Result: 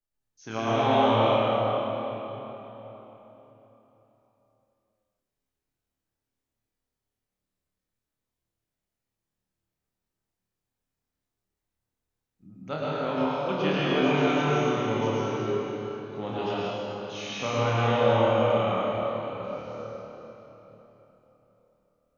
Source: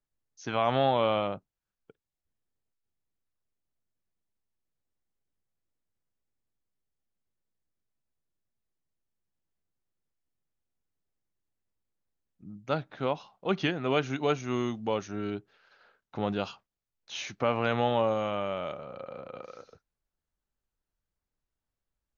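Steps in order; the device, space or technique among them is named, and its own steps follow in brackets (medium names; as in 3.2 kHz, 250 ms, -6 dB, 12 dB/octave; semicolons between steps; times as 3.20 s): tunnel (flutter echo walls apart 4.6 m, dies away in 0.39 s; reverberation RT60 3.8 s, pre-delay 98 ms, DRR -8 dB); trim -5.5 dB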